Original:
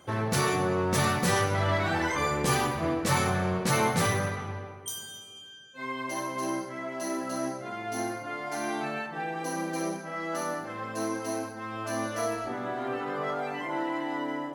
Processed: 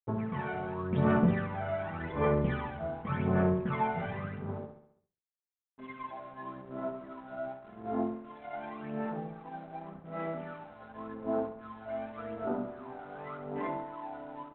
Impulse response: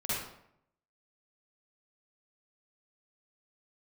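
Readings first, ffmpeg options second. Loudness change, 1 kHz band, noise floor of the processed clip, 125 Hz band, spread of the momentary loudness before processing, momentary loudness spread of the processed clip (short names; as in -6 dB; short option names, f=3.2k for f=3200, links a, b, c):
-5.0 dB, -7.0 dB, under -85 dBFS, -3.5 dB, 11 LU, 16 LU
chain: -af "afwtdn=0.0178,aphaser=in_gain=1:out_gain=1:delay=1.4:decay=0.73:speed=0.88:type=sinusoidal,aecho=1:1:4.7:0.44,aresample=8000,aeval=exprs='sgn(val(0))*max(abs(val(0))-0.00794,0)':c=same,aresample=44100,lowpass=f=1.1k:p=1,aecho=1:1:68|136|204|272|340|408:0.316|0.161|0.0823|0.0419|0.0214|0.0109,volume=-8dB"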